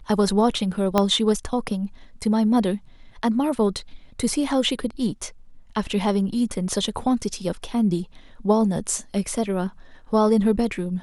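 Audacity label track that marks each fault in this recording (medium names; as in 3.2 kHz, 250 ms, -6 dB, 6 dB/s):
0.980000	0.980000	pop -6 dBFS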